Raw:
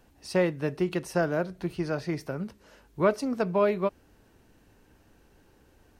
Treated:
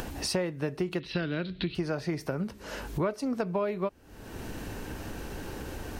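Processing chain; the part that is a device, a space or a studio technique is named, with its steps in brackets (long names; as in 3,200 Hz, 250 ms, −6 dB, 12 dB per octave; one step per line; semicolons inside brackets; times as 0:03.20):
0:01.00–0:01.75: drawn EQ curve 300 Hz 0 dB, 770 Hz −14 dB, 3,900 Hz +14 dB, 6,900 Hz −27 dB
upward and downward compression (upward compression, threshold −33 dBFS; downward compressor 5 to 1, threshold −36 dBFS, peak gain reduction 16.5 dB)
level +8 dB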